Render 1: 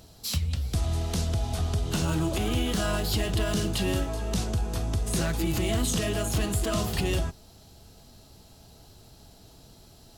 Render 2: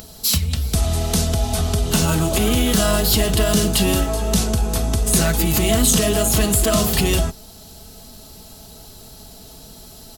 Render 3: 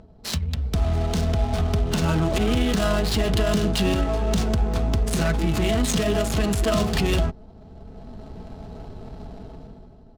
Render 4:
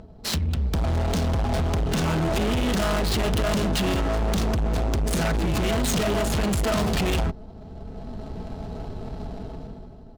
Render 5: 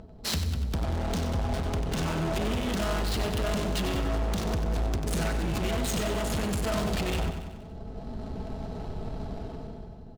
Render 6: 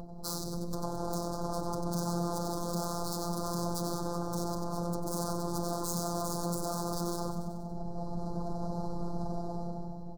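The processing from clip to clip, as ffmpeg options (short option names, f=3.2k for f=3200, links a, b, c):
-af "aecho=1:1:4.6:0.41,acompressor=mode=upward:threshold=-47dB:ratio=2.5,highshelf=f=8.2k:g=11,volume=8.5dB"
-af "dynaudnorm=f=130:g=11:m=12dB,alimiter=limit=-5.5dB:level=0:latency=1:release=46,adynamicsmooth=sensitivity=2:basefreq=680,volume=-5.5dB"
-af "asoftclip=type=hard:threshold=-25dB,volume=4dB"
-filter_complex "[0:a]asplit=2[a][b];[b]aecho=0:1:94|188|282|376|470|564:0.398|0.211|0.112|0.0593|0.0314|0.0166[c];[a][c]amix=inputs=2:normalize=0,alimiter=limit=-20dB:level=0:latency=1:release=401,volume=-2.5dB"
-af "aeval=exprs='0.0794*sin(PI/2*2.51*val(0)/0.0794)':c=same,afftfilt=real='hypot(re,im)*cos(PI*b)':imag='0':win_size=1024:overlap=0.75,asuperstop=centerf=2400:order=8:qfactor=0.74,volume=-4dB"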